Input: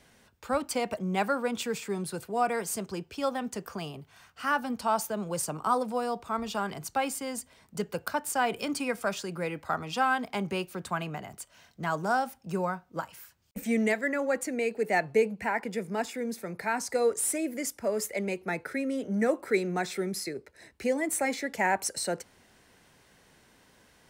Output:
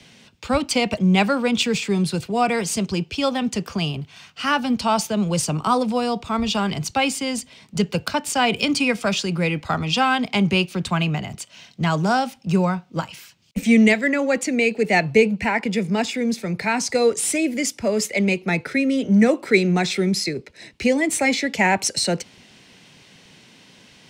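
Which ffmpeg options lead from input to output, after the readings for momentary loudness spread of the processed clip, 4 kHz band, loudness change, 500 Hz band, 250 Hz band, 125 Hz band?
8 LU, +15.5 dB, +10.0 dB, +7.5 dB, +13.0 dB, +15.5 dB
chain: -filter_complex "[0:a]bass=f=250:g=12,treble=f=4k:g=-8,acrossover=split=130|440|7200[a][b][c][d];[a]aeval=exprs='sgn(val(0))*max(abs(val(0))-0.00158,0)':c=same[e];[c]aexciter=amount=5.3:drive=3.4:freq=2.3k[f];[e][b][f][d]amix=inputs=4:normalize=0,volume=6.5dB"

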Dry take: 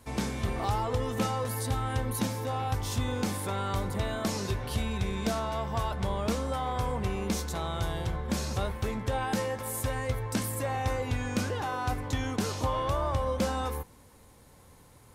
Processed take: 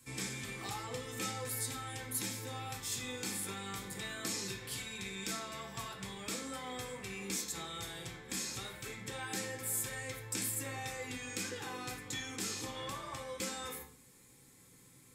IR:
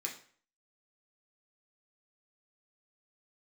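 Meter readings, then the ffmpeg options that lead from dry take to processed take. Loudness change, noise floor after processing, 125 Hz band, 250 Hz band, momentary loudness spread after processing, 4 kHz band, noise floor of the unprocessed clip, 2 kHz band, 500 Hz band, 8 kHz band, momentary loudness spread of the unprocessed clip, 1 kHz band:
-8.0 dB, -61 dBFS, -16.0 dB, -12.0 dB, 7 LU, -2.5 dB, -56 dBFS, -4.0 dB, -13.0 dB, +1.5 dB, 3 LU, -13.0 dB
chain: -filter_complex "[0:a]equalizer=f=750:w=0.5:g=-12.5,acrossover=split=520[a][b];[a]acompressor=threshold=-39dB:ratio=6[c];[c][b]amix=inputs=2:normalize=0[d];[1:a]atrim=start_sample=2205[e];[d][e]afir=irnorm=-1:irlink=0,volume=1dB"

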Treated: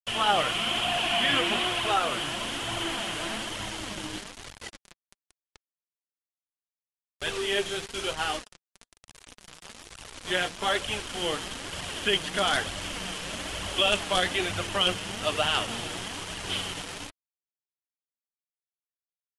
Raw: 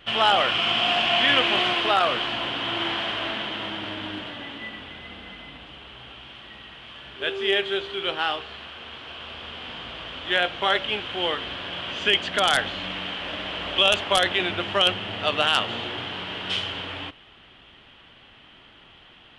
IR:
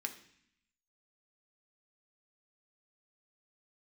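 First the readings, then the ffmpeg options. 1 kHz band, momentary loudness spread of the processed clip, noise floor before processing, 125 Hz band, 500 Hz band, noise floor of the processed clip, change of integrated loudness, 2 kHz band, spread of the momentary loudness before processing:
-4.5 dB, 15 LU, -51 dBFS, -0.5 dB, -4.5 dB, under -85 dBFS, -4.5 dB, -5.0 dB, 20 LU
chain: -af "acrusher=bits=4:mix=0:aa=0.000001,lowshelf=f=190:g=8,flanger=delay=0.9:depth=5.9:regen=28:speed=1.1:shape=triangular,volume=-1.5dB" -ar 24000 -c:a aac -b:a 48k

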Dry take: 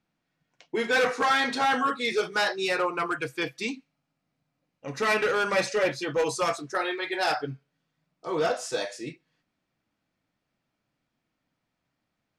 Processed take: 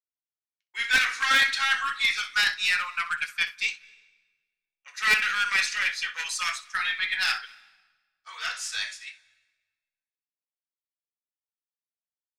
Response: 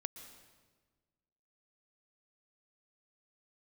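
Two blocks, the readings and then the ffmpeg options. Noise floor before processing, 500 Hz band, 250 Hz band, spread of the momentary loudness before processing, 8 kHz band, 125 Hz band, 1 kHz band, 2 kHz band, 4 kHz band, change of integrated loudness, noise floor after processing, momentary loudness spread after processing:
-81 dBFS, -25.0 dB, under -15 dB, 13 LU, +4.0 dB, under -15 dB, -4.5 dB, +5.0 dB, +6.0 dB, +2.0 dB, under -85 dBFS, 12 LU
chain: -filter_complex "[0:a]agate=range=-33dB:threshold=-35dB:ratio=3:detection=peak,highpass=f=1.5k:w=0.5412,highpass=f=1.5k:w=1.3066,adynamicequalizer=threshold=0.00794:dfrequency=2300:dqfactor=0.71:tfrequency=2300:tqfactor=0.71:attack=5:release=100:ratio=0.375:range=2:mode=boostabove:tftype=bell,aeval=exprs='0.188*(cos(1*acos(clip(val(0)/0.188,-1,1)))-cos(1*PI/2))+0.0531*(cos(2*acos(clip(val(0)/0.188,-1,1)))-cos(2*PI/2))+0.0211*(cos(4*acos(clip(val(0)/0.188,-1,1)))-cos(4*PI/2))':c=same,asplit=2[a][b];[1:a]atrim=start_sample=2205,adelay=63[c];[b][c]afir=irnorm=-1:irlink=0,volume=-12.5dB[d];[a][d]amix=inputs=2:normalize=0,volume=3dB"

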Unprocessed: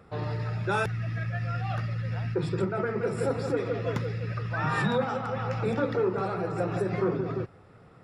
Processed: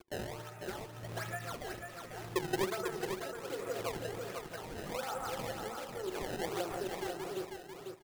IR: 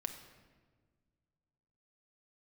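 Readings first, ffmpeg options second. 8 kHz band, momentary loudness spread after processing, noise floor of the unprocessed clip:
+5.5 dB, 8 LU, -54 dBFS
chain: -filter_complex "[0:a]lowshelf=f=500:t=q:w=1.5:g=-9,bandreject=f=60:t=h:w=6,bandreject=f=120:t=h:w=6,bandreject=f=180:t=h:w=6,bandreject=f=240:t=h:w=6,bandreject=f=300:t=h:w=6,bandreject=f=360:t=h:w=6,aeval=exprs='sgn(val(0))*max(abs(val(0))-0.00299,0)':c=same,highpass=100,acompressor=threshold=-38dB:ratio=6,lowpass=4.2k,asplit=2[a][b];[1:a]atrim=start_sample=2205[c];[b][c]afir=irnorm=-1:irlink=0,volume=-12.5dB[d];[a][d]amix=inputs=2:normalize=0,tremolo=f=0.77:d=0.67,equalizer=f=360:w=2.9:g=14.5,acrusher=samples=22:mix=1:aa=0.000001:lfo=1:lforange=35.2:lforate=1.3,aecho=1:1:495|990|1485:0.531|0.101|0.0192,acompressor=mode=upward:threshold=-45dB:ratio=2.5"

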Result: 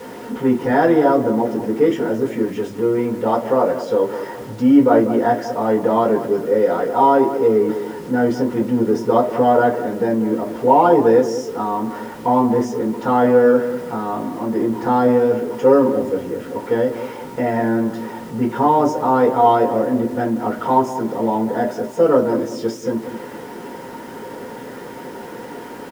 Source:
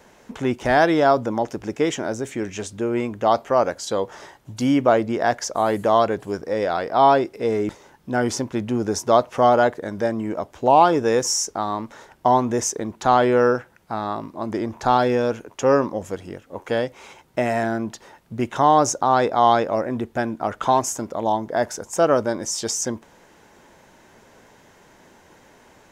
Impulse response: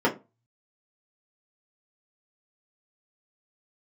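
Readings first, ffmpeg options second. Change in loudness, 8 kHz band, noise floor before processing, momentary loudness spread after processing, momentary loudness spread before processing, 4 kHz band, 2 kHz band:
+3.5 dB, under -10 dB, -53 dBFS, 17 LU, 12 LU, n/a, -1.0 dB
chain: -filter_complex "[0:a]aeval=exprs='val(0)+0.5*0.0316*sgn(val(0))':c=same,asplit=2[a][b];[b]adelay=192,lowpass=f=1.1k:p=1,volume=-10dB,asplit=2[c][d];[d]adelay=192,lowpass=f=1.1k:p=1,volume=0.4,asplit=2[e][f];[f]adelay=192,lowpass=f=1.1k:p=1,volume=0.4,asplit=2[g][h];[h]adelay=192,lowpass=f=1.1k:p=1,volume=0.4[i];[a][c][e][g][i]amix=inputs=5:normalize=0[j];[1:a]atrim=start_sample=2205[k];[j][k]afir=irnorm=-1:irlink=0,acrusher=bits=4:mix=0:aa=0.000001,volume=-16dB"

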